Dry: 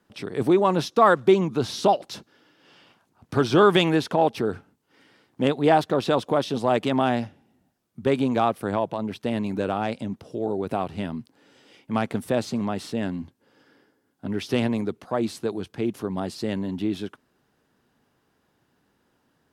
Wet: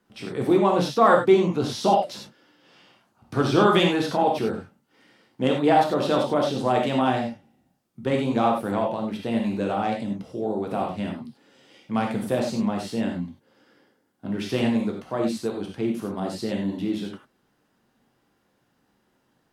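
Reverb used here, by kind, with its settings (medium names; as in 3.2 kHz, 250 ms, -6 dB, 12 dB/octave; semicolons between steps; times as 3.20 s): gated-style reverb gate 120 ms flat, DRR -0.5 dB; trim -3 dB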